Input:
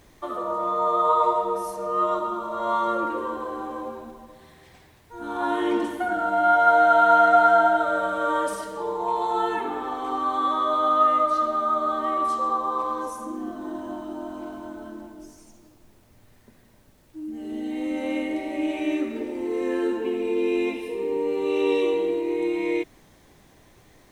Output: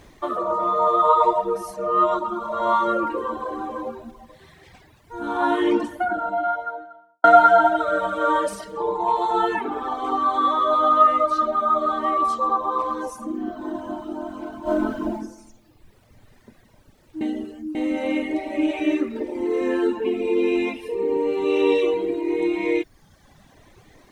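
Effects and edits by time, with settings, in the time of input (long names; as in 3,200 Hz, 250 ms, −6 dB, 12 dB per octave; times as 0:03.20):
0:05.66–0:07.24: fade out and dull
0:14.62–0:15.15: thrown reverb, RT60 1.1 s, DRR −10 dB
0:17.21–0:17.75: reverse
whole clip: reverb reduction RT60 1.1 s; high-shelf EQ 8,000 Hz −8.5 dB; level +6 dB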